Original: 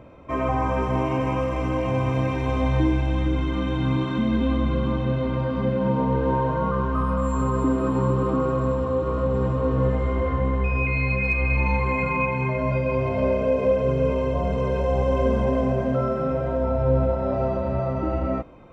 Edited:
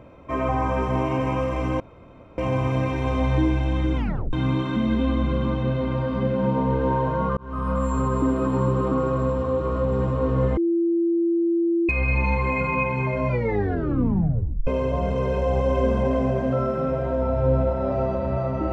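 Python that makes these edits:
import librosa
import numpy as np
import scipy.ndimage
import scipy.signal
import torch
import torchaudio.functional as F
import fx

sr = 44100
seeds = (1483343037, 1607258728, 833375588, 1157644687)

y = fx.edit(x, sr, fx.insert_room_tone(at_s=1.8, length_s=0.58),
    fx.tape_stop(start_s=3.39, length_s=0.36),
    fx.fade_in_span(start_s=6.79, length_s=0.36),
    fx.bleep(start_s=9.99, length_s=1.32, hz=338.0, db=-18.0),
    fx.tape_stop(start_s=12.7, length_s=1.39), tone=tone)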